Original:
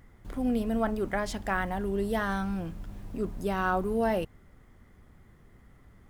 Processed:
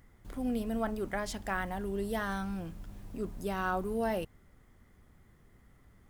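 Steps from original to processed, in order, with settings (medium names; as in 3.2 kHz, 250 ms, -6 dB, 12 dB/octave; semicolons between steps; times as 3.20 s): treble shelf 4.2 kHz +5.5 dB; trim -5 dB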